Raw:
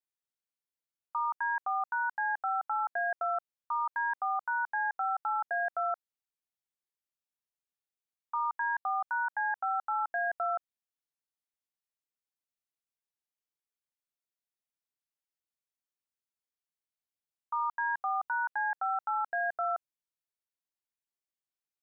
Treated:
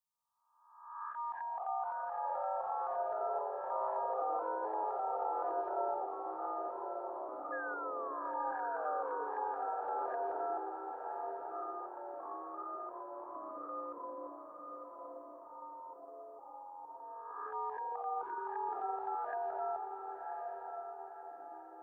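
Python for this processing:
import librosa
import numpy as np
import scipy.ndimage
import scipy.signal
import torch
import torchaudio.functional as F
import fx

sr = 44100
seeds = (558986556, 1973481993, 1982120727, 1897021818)

p1 = fx.spec_swells(x, sr, rise_s=0.96)
p2 = fx.echo_pitch(p1, sr, ms=155, semitones=-5, count=3, db_per_echo=-6.0)
p3 = fx.env_phaser(p2, sr, low_hz=350.0, high_hz=1600.0, full_db=-28.0)
p4 = fx.spec_paint(p3, sr, seeds[0], shape='fall', start_s=7.52, length_s=1.72, low_hz=460.0, high_hz=1700.0, level_db=-41.0)
p5 = p4 + fx.echo_diffused(p4, sr, ms=1074, feedback_pct=46, wet_db=-5, dry=0)
y = p5 * librosa.db_to_amplitude(-2.0)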